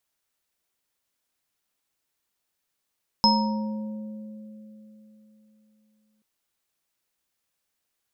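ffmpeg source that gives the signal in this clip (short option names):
-f lavfi -i "aevalsrc='0.0944*pow(10,-3*t/3.75)*sin(2*PI*214*t)+0.0282*pow(10,-3*t/3.38)*sin(2*PI*540*t)+0.141*pow(10,-3*t/1.04)*sin(2*PI*936*t)+0.168*pow(10,-3*t/0.51)*sin(2*PI*5160*t)':d=2.98:s=44100"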